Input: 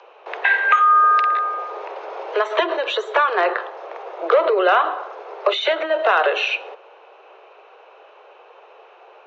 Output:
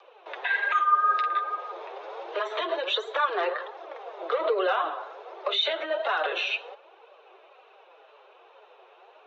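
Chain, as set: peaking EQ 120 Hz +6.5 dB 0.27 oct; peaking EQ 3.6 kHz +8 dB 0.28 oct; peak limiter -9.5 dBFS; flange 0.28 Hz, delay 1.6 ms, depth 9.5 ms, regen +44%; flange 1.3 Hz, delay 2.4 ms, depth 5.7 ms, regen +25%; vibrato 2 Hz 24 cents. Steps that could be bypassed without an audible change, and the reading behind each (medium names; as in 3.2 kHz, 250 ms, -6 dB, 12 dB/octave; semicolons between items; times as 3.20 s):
peaking EQ 120 Hz: input has nothing below 300 Hz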